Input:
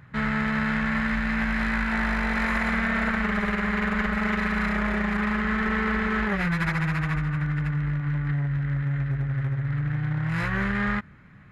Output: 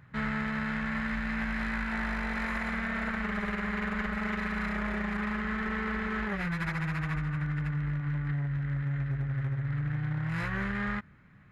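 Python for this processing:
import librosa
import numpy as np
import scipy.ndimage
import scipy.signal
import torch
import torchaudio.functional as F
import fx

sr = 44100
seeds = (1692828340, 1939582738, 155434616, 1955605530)

y = fx.rider(x, sr, range_db=10, speed_s=0.5)
y = y * librosa.db_to_amplitude(-6.5)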